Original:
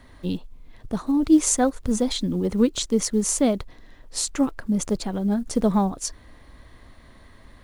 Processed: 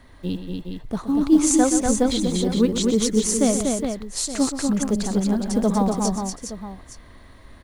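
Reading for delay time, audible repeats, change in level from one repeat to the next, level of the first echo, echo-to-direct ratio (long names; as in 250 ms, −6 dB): 125 ms, 4, repeats not evenly spaced, −11.0 dB, −1.5 dB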